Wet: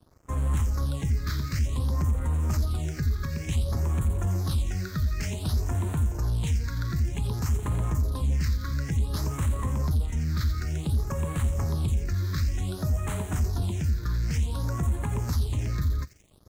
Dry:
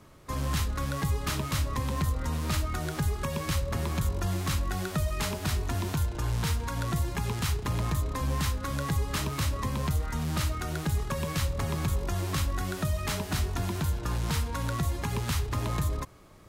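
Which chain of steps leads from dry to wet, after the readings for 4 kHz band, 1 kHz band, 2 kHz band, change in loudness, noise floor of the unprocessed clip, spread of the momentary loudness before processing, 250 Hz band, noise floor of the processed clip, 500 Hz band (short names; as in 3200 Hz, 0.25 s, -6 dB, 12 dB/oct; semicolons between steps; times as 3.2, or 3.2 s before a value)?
-5.0 dB, -5.5 dB, -5.0 dB, +2.5 dB, -38 dBFS, 2 LU, 0.0 dB, -38 dBFS, -3.0 dB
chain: bell 73 Hz +8 dB 0.96 oct; soft clip -20 dBFS, distortion -15 dB; thin delay 86 ms, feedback 70%, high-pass 2700 Hz, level -7 dB; crossover distortion -52 dBFS; phaser stages 6, 0.55 Hz, lowest notch 740–4900 Hz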